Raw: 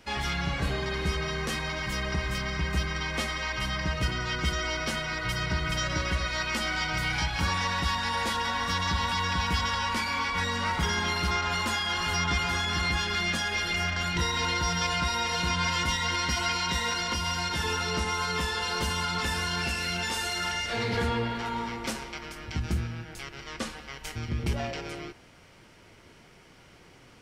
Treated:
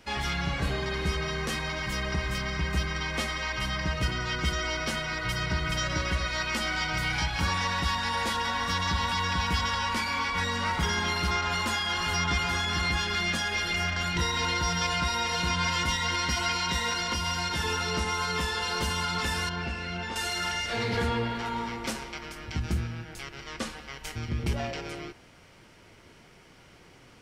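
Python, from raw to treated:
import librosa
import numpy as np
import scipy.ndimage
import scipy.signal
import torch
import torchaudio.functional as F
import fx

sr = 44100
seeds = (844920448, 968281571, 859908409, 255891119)

y = fx.spacing_loss(x, sr, db_at_10k=23, at=(19.49, 20.16))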